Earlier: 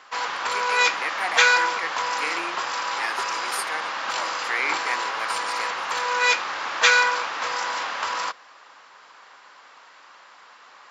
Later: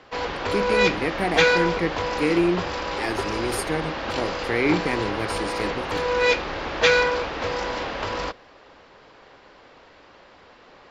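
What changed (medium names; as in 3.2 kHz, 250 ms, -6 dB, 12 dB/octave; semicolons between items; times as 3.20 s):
background: add three-band isolator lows -17 dB, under 380 Hz, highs -21 dB, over 5.4 kHz; master: remove resonant high-pass 1.1 kHz, resonance Q 1.8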